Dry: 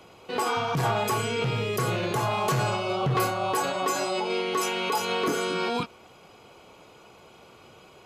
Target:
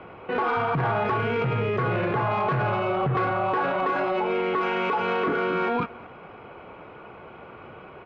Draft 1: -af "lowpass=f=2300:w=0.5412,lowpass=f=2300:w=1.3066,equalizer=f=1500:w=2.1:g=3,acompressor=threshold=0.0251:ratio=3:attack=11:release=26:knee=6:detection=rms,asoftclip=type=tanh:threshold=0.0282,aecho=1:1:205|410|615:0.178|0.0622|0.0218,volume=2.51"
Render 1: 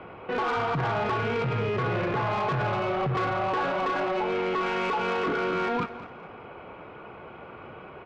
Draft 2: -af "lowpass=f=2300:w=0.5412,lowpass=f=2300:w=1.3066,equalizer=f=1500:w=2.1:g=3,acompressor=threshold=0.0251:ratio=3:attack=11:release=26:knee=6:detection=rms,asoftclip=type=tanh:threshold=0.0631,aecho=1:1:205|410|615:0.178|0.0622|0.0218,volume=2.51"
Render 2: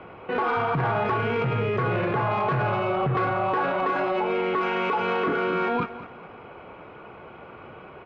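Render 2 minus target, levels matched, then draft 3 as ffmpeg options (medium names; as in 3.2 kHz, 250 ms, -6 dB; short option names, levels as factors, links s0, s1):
echo-to-direct +7.5 dB
-af "lowpass=f=2300:w=0.5412,lowpass=f=2300:w=1.3066,equalizer=f=1500:w=2.1:g=3,acompressor=threshold=0.0251:ratio=3:attack=11:release=26:knee=6:detection=rms,asoftclip=type=tanh:threshold=0.0631,aecho=1:1:205|410:0.075|0.0262,volume=2.51"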